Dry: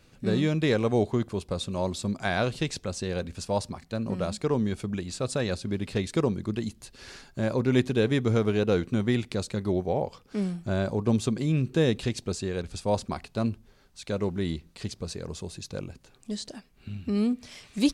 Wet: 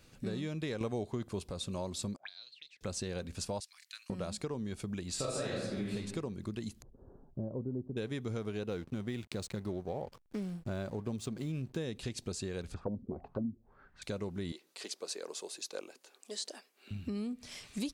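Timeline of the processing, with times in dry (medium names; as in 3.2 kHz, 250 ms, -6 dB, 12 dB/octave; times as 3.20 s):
0.81–1.51 s: gain +11 dB
2.16–2.81 s: auto-wah 490–4200 Hz, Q 19, up, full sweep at -24 dBFS
3.60–4.10 s: inverse Chebyshev high-pass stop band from 410 Hz, stop band 70 dB
5.15–5.93 s: reverb throw, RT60 0.92 s, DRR -9 dB
6.82–7.97 s: Gaussian low-pass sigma 12 samples
8.69–11.77 s: hysteresis with a dead band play -41.5 dBFS
12.74–14.02 s: touch-sensitive low-pass 240–2000 Hz down, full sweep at -23.5 dBFS
14.52–16.91 s: high-pass 360 Hz 24 dB/octave
whole clip: compression 6:1, threshold -32 dBFS; treble shelf 5.4 kHz +5.5 dB; trim -3 dB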